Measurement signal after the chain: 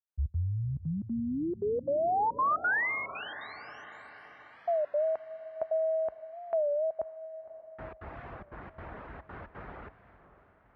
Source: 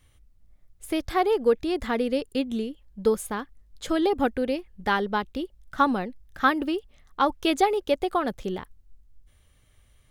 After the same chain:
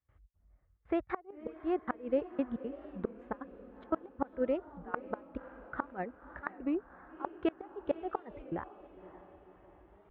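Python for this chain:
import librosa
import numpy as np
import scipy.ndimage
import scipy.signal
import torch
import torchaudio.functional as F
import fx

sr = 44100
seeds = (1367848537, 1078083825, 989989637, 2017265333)

y = fx.step_gate(x, sr, bpm=176, pattern='.xx.xxxxx', floor_db=-24.0, edge_ms=4.5)
y = scipy.signal.sosfilt(scipy.signal.butter(4, 1700.0, 'lowpass', fs=sr, output='sos'), y)
y = fx.peak_eq(y, sr, hz=200.0, db=-6.0, octaves=2.5)
y = fx.dereverb_blind(y, sr, rt60_s=0.53)
y = scipy.signal.sosfilt(scipy.signal.butter(4, 43.0, 'highpass', fs=sr, output='sos'), y)
y = fx.gate_flip(y, sr, shuts_db=-19.0, range_db=-30)
y = fx.echo_diffused(y, sr, ms=548, feedback_pct=53, wet_db=-14.5)
y = fx.record_warp(y, sr, rpm=33.33, depth_cents=160.0)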